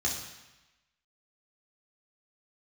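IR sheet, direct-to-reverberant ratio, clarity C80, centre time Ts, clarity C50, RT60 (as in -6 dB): -3.0 dB, 7.0 dB, 41 ms, 4.5 dB, 1.0 s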